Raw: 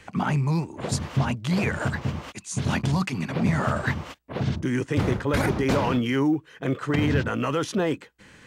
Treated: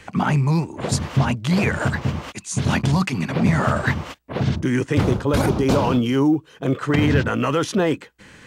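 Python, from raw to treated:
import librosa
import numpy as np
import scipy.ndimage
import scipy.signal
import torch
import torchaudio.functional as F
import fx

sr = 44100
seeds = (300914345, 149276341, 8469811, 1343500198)

y = fx.peak_eq(x, sr, hz=1900.0, db=-10.0, octaves=0.67, at=(5.04, 6.73))
y = F.gain(torch.from_numpy(y), 5.0).numpy()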